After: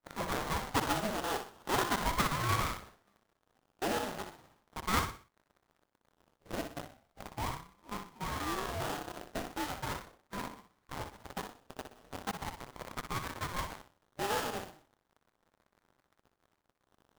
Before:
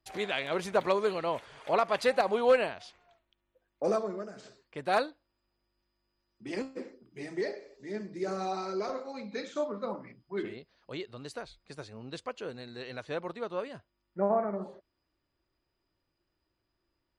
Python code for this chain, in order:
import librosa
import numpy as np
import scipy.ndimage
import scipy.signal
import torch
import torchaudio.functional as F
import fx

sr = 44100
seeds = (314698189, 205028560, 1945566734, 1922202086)

p1 = fx.octave_divider(x, sr, octaves=1, level_db=3.0)
p2 = scipy.signal.sosfilt(scipy.signal.butter(2, 510.0, 'highpass', fs=sr, output='sos'), p1)
p3 = fx.quant_companded(p2, sr, bits=2)
p4 = p2 + (p3 * 10.0 ** (-4.5 / 20.0))
p5 = fx.dmg_crackle(p4, sr, seeds[0], per_s=590.0, level_db=-51.0)
p6 = fx.hpss(p5, sr, part='percussive', gain_db=4)
p7 = fx.sample_hold(p6, sr, seeds[1], rate_hz=2200.0, jitter_pct=20)
p8 = p7 + fx.echo_feedback(p7, sr, ms=61, feedback_pct=34, wet_db=-7.5, dry=0)
p9 = fx.ring_lfo(p8, sr, carrier_hz=400.0, swing_pct=55, hz=0.38)
y = p9 * 10.0 ** (-7.0 / 20.0)